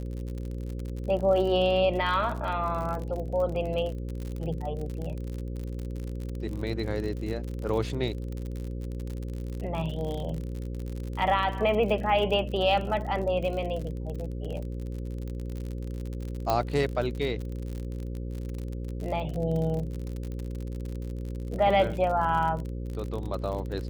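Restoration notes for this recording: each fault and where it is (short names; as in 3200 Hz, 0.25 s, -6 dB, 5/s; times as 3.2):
buzz 60 Hz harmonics 9 -34 dBFS
crackle 50/s -33 dBFS
16.5 pop -12 dBFS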